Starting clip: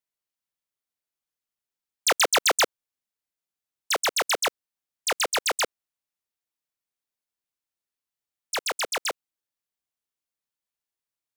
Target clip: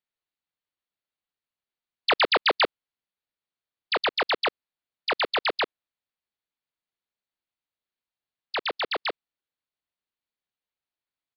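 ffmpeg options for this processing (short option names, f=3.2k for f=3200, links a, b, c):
-af "aresample=11025,aresample=44100,asetrate=40440,aresample=44100,atempo=1.09051"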